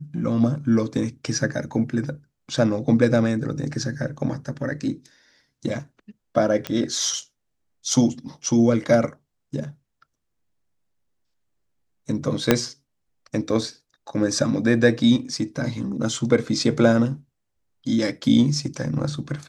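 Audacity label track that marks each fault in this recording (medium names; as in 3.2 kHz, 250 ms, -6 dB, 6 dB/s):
6.670000	6.670000	pop -12 dBFS
12.510000	12.510000	pop 0 dBFS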